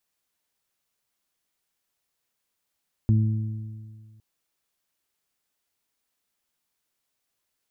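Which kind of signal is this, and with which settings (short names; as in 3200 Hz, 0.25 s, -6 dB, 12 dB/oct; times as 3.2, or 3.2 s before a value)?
additive tone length 1.11 s, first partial 109 Hz, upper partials -7/-18.5 dB, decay 1.90 s, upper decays 1.60/1.68 s, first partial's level -15.5 dB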